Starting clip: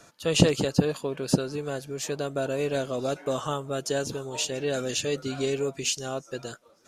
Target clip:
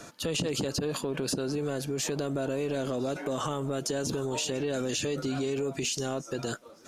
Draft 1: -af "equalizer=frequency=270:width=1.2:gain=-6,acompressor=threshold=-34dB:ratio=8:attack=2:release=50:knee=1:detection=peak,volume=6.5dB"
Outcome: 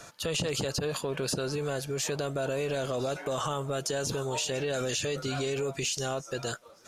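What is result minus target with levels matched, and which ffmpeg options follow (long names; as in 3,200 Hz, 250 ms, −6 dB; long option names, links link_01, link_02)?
250 Hz band −5.0 dB
-af "equalizer=frequency=270:width=1.2:gain=5,acompressor=threshold=-34dB:ratio=8:attack=2:release=50:knee=1:detection=peak,volume=6.5dB"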